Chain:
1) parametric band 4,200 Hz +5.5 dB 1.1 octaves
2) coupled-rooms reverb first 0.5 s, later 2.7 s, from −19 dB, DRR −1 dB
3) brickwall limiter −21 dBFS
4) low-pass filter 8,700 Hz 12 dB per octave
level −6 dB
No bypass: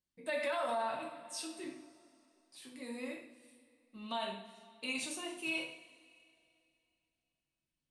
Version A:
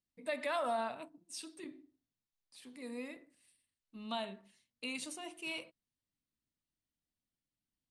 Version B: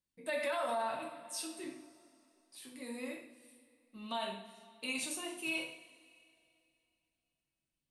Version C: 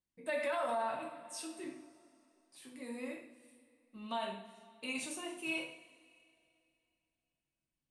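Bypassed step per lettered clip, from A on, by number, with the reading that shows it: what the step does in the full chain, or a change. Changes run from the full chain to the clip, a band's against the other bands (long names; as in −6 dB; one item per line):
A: 2, change in integrated loudness −2.0 LU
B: 4, 8 kHz band +3.0 dB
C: 1, 4 kHz band −3.5 dB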